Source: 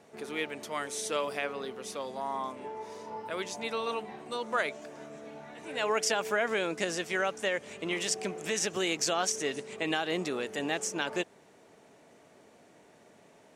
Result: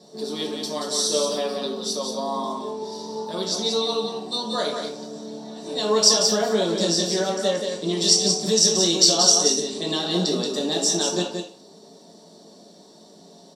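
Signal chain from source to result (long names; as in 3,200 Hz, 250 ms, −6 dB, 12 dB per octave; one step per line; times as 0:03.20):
high shelf with overshoot 3,000 Hz +11 dB, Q 3
single-tap delay 179 ms −5.5 dB
convolution reverb RT60 0.40 s, pre-delay 3 ms, DRR −3.5 dB
level −10 dB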